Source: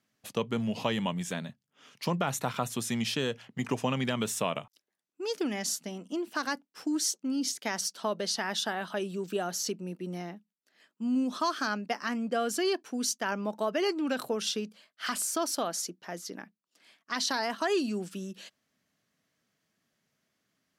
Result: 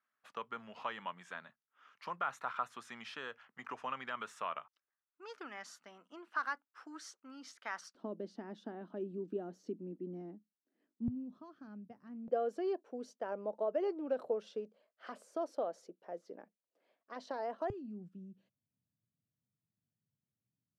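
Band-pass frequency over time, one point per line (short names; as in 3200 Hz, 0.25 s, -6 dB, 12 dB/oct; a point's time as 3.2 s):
band-pass, Q 2.8
1300 Hz
from 7.95 s 290 Hz
from 11.08 s 110 Hz
from 12.28 s 530 Hz
from 17.7 s 110 Hz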